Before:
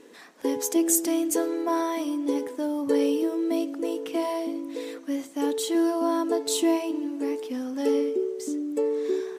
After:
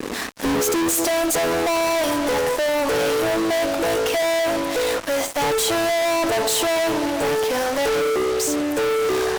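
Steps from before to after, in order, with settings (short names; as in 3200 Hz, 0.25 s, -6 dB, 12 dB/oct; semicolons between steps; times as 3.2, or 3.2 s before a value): high-pass sweep 200 Hz -> 680 Hz, 0.39–1.09; fuzz box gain 48 dB, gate -48 dBFS; gain -6 dB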